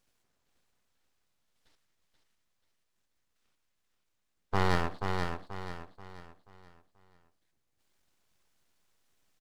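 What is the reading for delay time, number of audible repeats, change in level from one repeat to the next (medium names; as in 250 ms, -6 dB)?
483 ms, 4, -8.5 dB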